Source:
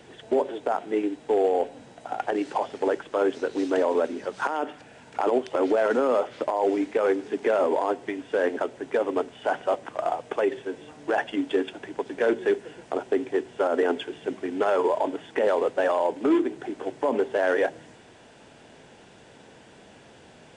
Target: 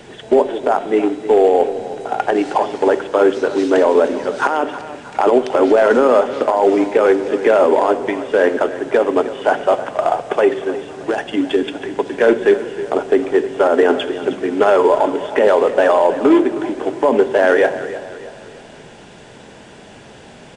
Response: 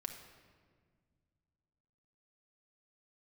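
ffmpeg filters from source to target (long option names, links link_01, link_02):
-filter_complex "[0:a]asettb=1/sr,asplit=3[link_01][link_02][link_03];[link_01]atrim=end=10.624[link_04];[link_02]atrim=start=10.62:end=11.63,asetpts=PTS-STARTPTS,afade=type=in:duration=0.004:curve=qsin,afade=type=out:start_time=1.006:duration=0.004:curve=qsin,acrossover=split=370|3000[link_05][link_06][link_07];[link_06]acompressor=threshold=-31dB:ratio=6[link_08];[link_05][link_08][link_07]amix=inputs=3:normalize=0[link_09];[link_03]atrim=start=11.626[link_10];[link_04][link_09]acrossfade=duration=0.004:curve1=hsin:curve2=qsin[link_11];[link_11][link_10]acrossfade=duration=0.004:curve1=qsin:curve2=hsin,aecho=1:1:314|628|942|1256:0.188|0.0829|0.0365|0.016,asplit=2[link_12][link_13];[1:a]atrim=start_sample=2205,lowshelf=frequency=66:gain=11.5[link_14];[link_13][link_14]afir=irnorm=-1:irlink=0,volume=-2.5dB[link_15];[link_12][link_15]amix=inputs=2:normalize=0,volume=6.5dB"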